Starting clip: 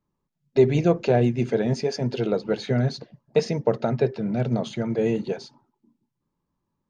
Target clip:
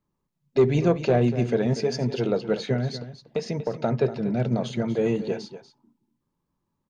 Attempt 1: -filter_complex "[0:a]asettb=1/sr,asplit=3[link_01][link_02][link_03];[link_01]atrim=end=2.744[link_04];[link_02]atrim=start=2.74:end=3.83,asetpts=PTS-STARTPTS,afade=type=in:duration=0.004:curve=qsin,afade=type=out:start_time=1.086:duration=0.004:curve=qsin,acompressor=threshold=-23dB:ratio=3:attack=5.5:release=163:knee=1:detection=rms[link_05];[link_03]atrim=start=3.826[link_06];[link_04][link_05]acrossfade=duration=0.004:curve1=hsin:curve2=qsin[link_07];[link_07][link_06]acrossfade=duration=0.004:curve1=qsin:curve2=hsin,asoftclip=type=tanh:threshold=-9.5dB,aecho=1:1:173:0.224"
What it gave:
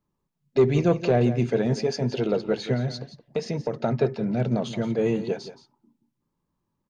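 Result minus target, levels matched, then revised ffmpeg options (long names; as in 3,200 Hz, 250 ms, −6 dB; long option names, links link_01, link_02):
echo 66 ms early
-filter_complex "[0:a]asettb=1/sr,asplit=3[link_01][link_02][link_03];[link_01]atrim=end=2.744[link_04];[link_02]atrim=start=2.74:end=3.83,asetpts=PTS-STARTPTS,afade=type=in:duration=0.004:curve=qsin,afade=type=out:start_time=1.086:duration=0.004:curve=qsin,acompressor=threshold=-23dB:ratio=3:attack=5.5:release=163:knee=1:detection=rms[link_05];[link_03]atrim=start=3.826[link_06];[link_04][link_05]acrossfade=duration=0.004:curve1=hsin:curve2=qsin[link_07];[link_07][link_06]acrossfade=duration=0.004:curve1=qsin:curve2=hsin,asoftclip=type=tanh:threshold=-9.5dB,aecho=1:1:239:0.224"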